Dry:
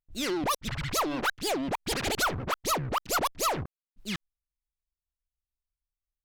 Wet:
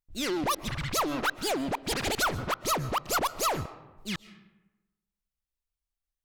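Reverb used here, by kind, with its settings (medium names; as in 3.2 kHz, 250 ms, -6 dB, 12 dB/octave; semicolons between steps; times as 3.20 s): algorithmic reverb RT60 1.1 s, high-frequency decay 0.55×, pre-delay 90 ms, DRR 16 dB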